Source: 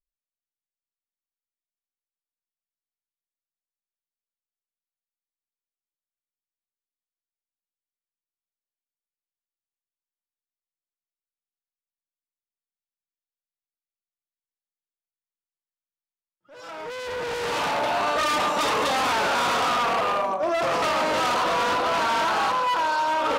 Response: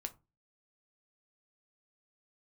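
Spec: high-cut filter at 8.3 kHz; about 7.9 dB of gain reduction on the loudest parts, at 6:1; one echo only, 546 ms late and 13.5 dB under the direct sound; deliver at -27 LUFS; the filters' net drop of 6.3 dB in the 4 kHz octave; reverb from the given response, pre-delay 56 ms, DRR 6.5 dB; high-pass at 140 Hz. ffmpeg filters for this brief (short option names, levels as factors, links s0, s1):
-filter_complex "[0:a]highpass=140,lowpass=8300,equalizer=f=4000:t=o:g=-8.5,acompressor=threshold=0.0316:ratio=6,aecho=1:1:546:0.211,asplit=2[s0][s1];[1:a]atrim=start_sample=2205,adelay=56[s2];[s1][s2]afir=irnorm=-1:irlink=0,volume=0.631[s3];[s0][s3]amix=inputs=2:normalize=0,volume=1.5"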